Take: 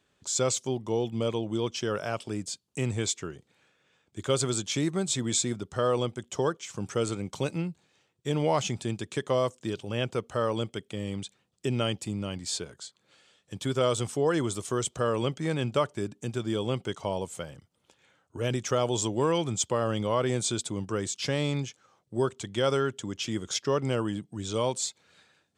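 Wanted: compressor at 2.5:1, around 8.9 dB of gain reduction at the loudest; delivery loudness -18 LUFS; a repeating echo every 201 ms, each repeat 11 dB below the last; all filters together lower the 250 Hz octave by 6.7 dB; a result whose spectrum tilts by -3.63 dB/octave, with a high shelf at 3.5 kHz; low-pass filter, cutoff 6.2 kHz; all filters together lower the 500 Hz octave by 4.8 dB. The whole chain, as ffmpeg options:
-af "lowpass=6200,equalizer=f=250:t=o:g=-8.5,equalizer=f=500:t=o:g=-3.5,highshelf=f=3500:g=4.5,acompressor=threshold=0.0141:ratio=2.5,aecho=1:1:201|402|603:0.282|0.0789|0.0221,volume=10.6"

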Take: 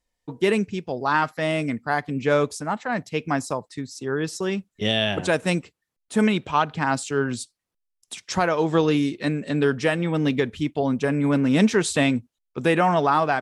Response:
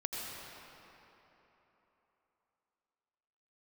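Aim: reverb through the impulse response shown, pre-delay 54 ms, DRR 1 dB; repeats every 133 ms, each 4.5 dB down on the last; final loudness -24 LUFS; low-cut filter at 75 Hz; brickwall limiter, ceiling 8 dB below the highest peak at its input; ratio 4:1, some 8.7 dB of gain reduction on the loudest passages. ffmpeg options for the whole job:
-filter_complex "[0:a]highpass=75,acompressor=threshold=0.0562:ratio=4,alimiter=limit=0.0944:level=0:latency=1,aecho=1:1:133|266|399|532|665|798|931|1064|1197:0.596|0.357|0.214|0.129|0.0772|0.0463|0.0278|0.0167|0.01,asplit=2[s0][s1];[1:a]atrim=start_sample=2205,adelay=54[s2];[s1][s2]afir=irnorm=-1:irlink=0,volume=0.631[s3];[s0][s3]amix=inputs=2:normalize=0,volume=1.5"

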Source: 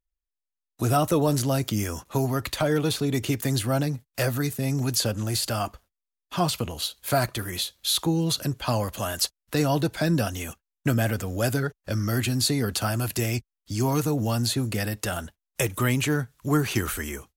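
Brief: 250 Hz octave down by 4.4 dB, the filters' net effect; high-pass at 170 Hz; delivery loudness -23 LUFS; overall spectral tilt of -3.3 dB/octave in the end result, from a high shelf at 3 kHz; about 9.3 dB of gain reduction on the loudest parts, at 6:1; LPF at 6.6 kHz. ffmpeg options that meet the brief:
-af "highpass=170,lowpass=6600,equalizer=f=250:t=o:g=-4.5,highshelf=f=3000:g=7.5,acompressor=threshold=0.0447:ratio=6,volume=2.66"

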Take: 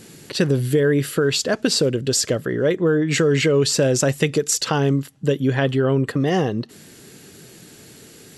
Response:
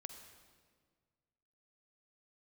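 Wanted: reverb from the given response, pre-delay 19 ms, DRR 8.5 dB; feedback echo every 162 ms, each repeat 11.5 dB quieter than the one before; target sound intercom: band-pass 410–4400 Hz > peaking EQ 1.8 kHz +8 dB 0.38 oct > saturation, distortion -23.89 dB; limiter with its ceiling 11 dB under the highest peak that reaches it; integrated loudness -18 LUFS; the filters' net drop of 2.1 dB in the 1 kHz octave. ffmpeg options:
-filter_complex "[0:a]equalizer=f=1000:t=o:g=-3.5,alimiter=limit=0.158:level=0:latency=1,aecho=1:1:162|324|486:0.266|0.0718|0.0194,asplit=2[s0][s1];[1:a]atrim=start_sample=2205,adelay=19[s2];[s1][s2]afir=irnorm=-1:irlink=0,volume=0.631[s3];[s0][s3]amix=inputs=2:normalize=0,highpass=410,lowpass=4400,equalizer=f=1800:t=o:w=0.38:g=8,asoftclip=threshold=0.178,volume=2.99"

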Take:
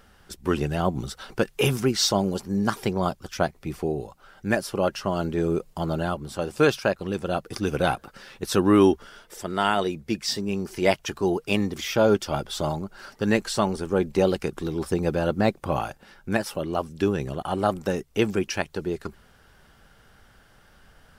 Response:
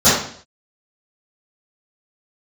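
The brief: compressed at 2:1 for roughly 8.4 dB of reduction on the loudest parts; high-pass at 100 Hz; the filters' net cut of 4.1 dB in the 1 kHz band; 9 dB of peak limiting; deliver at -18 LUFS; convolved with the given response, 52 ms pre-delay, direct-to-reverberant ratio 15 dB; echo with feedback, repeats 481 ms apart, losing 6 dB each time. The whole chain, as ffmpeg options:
-filter_complex "[0:a]highpass=100,equalizer=f=1000:t=o:g=-6,acompressor=threshold=0.0355:ratio=2,alimiter=limit=0.0841:level=0:latency=1,aecho=1:1:481|962|1443|1924|2405|2886:0.501|0.251|0.125|0.0626|0.0313|0.0157,asplit=2[s0][s1];[1:a]atrim=start_sample=2205,adelay=52[s2];[s1][s2]afir=irnorm=-1:irlink=0,volume=0.00944[s3];[s0][s3]amix=inputs=2:normalize=0,volume=5.31"

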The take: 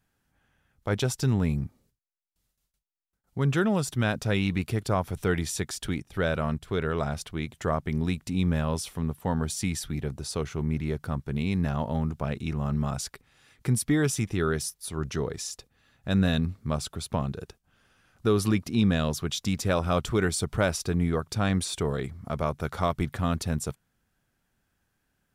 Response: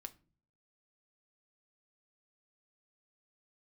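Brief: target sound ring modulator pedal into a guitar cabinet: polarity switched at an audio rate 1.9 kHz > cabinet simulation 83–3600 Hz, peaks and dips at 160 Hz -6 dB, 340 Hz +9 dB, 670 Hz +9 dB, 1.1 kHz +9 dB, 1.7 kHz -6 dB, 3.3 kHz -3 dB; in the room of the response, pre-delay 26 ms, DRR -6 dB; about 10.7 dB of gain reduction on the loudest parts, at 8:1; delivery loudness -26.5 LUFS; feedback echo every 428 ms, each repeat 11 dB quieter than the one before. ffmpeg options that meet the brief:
-filter_complex "[0:a]acompressor=threshold=0.0316:ratio=8,aecho=1:1:428|856|1284:0.282|0.0789|0.0221,asplit=2[s0][s1];[1:a]atrim=start_sample=2205,adelay=26[s2];[s1][s2]afir=irnorm=-1:irlink=0,volume=3.55[s3];[s0][s3]amix=inputs=2:normalize=0,aeval=exprs='val(0)*sgn(sin(2*PI*1900*n/s))':c=same,highpass=83,equalizer=f=160:t=q:w=4:g=-6,equalizer=f=340:t=q:w=4:g=9,equalizer=f=670:t=q:w=4:g=9,equalizer=f=1100:t=q:w=4:g=9,equalizer=f=1700:t=q:w=4:g=-6,equalizer=f=3300:t=q:w=4:g=-3,lowpass=f=3600:w=0.5412,lowpass=f=3600:w=1.3066,volume=1.26"

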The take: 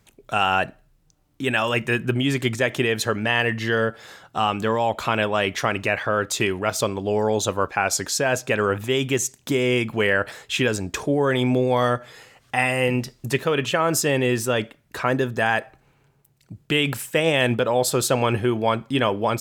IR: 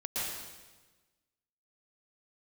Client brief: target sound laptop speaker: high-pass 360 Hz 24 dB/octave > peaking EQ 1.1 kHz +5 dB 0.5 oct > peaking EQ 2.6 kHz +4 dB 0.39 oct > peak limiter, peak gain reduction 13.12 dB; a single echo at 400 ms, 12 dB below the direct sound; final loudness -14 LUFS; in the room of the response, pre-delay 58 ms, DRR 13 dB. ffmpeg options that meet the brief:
-filter_complex "[0:a]aecho=1:1:400:0.251,asplit=2[s0][s1];[1:a]atrim=start_sample=2205,adelay=58[s2];[s1][s2]afir=irnorm=-1:irlink=0,volume=0.119[s3];[s0][s3]amix=inputs=2:normalize=0,highpass=f=360:w=0.5412,highpass=f=360:w=1.3066,equalizer=f=1100:t=o:w=0.5:g=5,equalizer=f=2600:t=o:w=0.39:g=4,volume=5.01,alimiter=limit=0.631:level=0:latency=1"

